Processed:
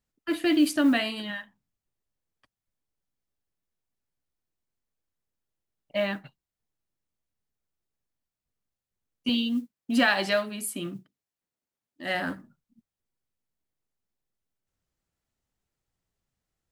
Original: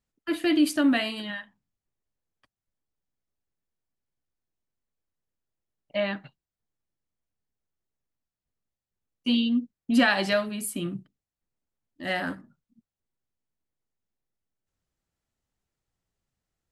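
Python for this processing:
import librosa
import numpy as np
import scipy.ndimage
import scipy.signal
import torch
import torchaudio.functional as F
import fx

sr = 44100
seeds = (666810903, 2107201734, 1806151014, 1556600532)

y = fx.highpass(x, sr, hz=250.0, slope=6, at=(9.29, 12.15))
y = fx.mod_noise(y, sr, seeds[0], snr_db=34)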